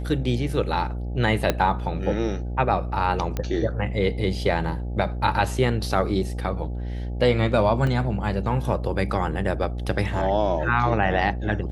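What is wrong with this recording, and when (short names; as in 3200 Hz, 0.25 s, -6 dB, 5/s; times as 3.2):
buzz 60 Hz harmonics 14 -29 dBFS
1.5 pop -6 dBFS
3.37 pop -13 dBFS
7.87 gap 2.5 ms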